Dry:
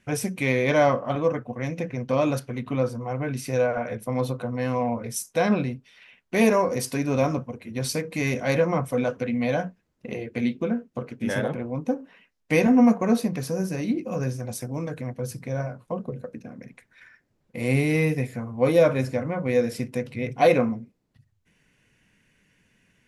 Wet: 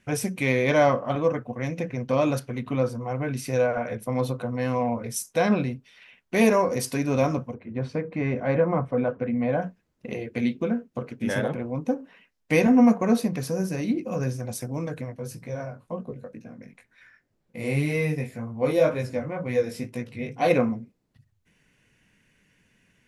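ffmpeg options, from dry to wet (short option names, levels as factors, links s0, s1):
-filter_complex "[0:a]asplit=3[s0][s1][s2];[s0]afade=t=out:st=7.53:d=0.02[s3];[s1]lowpass=1600,afade=t=in:st=7.53:d=0.02,afade=t=out:st=9.61:d=0.02[s4];[s2]afade=t=in:st=9.61:d=0.02[s5];[s3][s4][s5]amix=inputs=3:normalize=0,asplit=3[s6][s7][s8];[s6]afade=t=out:st=15.04:d=0.02[s9];[s7]flanger=delay=17:depth=3.8:speed=2,afade=t=in:st=15.04:d=0.02,afade=t=out:st=20.49:d=0.02[s10];[s8]afade=t=in:st=20.49:d=0.02[s11];[s9][s10][s11]amix=inputs=3:normalize=0"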